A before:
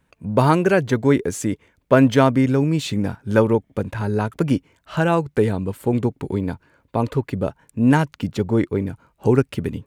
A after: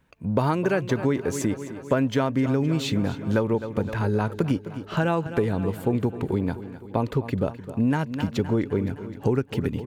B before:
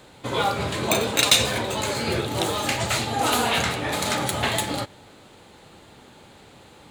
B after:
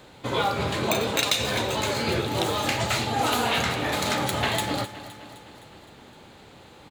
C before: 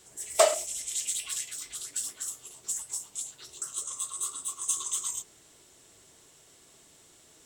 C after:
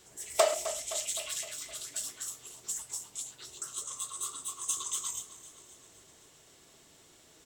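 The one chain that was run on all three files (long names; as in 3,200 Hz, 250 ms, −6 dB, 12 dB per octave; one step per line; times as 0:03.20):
on a send: repeating echo 258 ms, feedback 59%, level −16 dB
on the sum: downward compressor 6 to 1, threshold −19 dBFS
parametric band 9,100 Hz −5.5 dB 0.69 octaves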